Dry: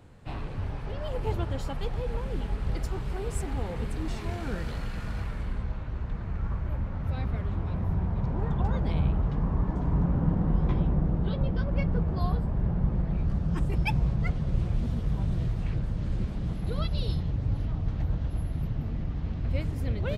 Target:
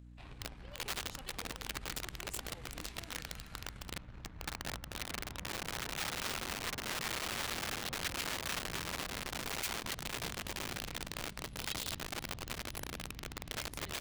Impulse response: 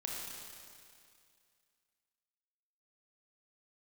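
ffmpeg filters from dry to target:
-filter_complex "[0:a]aeval=exprs='0.237*(cos(1*acos(clip(val(0)/0.237,-1,1)))-cos(1*PI/2))+0.00266*(cos(4*acos(clip(val(0)/0.237,-1,1)))-cos(4*PI/2))+0.0237*(cos(7*acos(clip(val(0)/0.237,-1,1)))-cos(7*PI/2))':c=same,asplit=2[a][b];[b]adelay=710,lowpass=f=840:p=1,volume=-18dB,asplit=2[c][d];[d]adelay=710,lowpass=f=840:p=1,volume=0.22[e];[a][c][e]amix=inputs=3:normalize=0,asetrate=42336,aresample=44100,aeval=exprs='val(0)+0.00891*(sin(2*PI*60*n/s)+sin(2*PI*2*60*n/s)/2+sin(2*PI*3*60*n/s)/3+sin(2*PI*4*60*n/s)/4+sin(2*PI*5*60*n/s)/5)':c=same,aeval=exprs='(mod(21.1*val(0)+1,2)-1)/21.1':c=same,tiltshelf=f=1.5k:g=-7,atempo=1.5,acrossover=split=3300[f][g];[g]asoftclip=type=tanh:threshold=-25dB[h];[f][h]amix=inputs=2:normalize=0,volume=-4.5dB"

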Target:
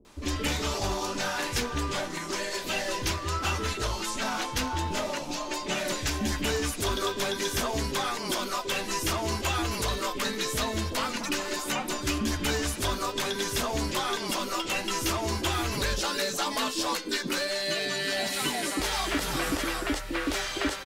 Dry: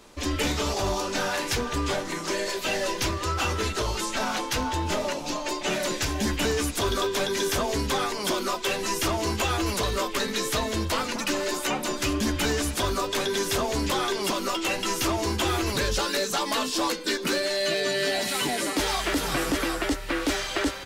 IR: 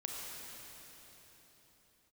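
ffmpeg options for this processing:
-filter_complex "[0:a]acrossover=split=470[a][b];[b]adelay=50[c];[a][c]amix=inputs=2:normalize=0,volume=-2dB"

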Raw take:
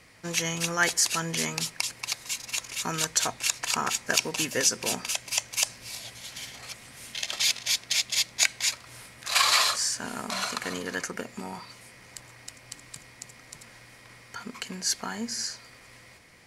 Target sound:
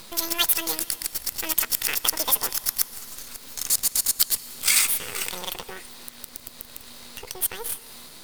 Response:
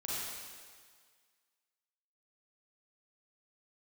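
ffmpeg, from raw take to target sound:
-filter_complex "[0:a]highshelf=f=2.8k:g=4,acompressor=mode=upward:threshold=-30dB:ratio=2.5,acrusher=bits=5:dc=4:mix=0:aa=0.000001,asetrate=88200,aresample=44100,asplit=2[a][b];[1:a]atrim=start_sample=2205,asetrate=33516,aresample=44100,adelay=119[c];[b][c]afir=irnorm=-1:irlink=0,volume=-23dB[d];[a][d]amix=inputs=2:normalize=0,volume=1dB"

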